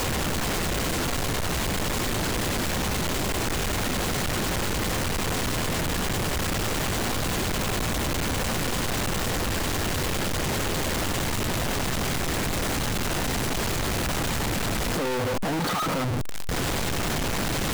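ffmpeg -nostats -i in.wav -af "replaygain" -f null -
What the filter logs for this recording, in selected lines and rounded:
track_gain = +11.2 dB
track_peak = 0.037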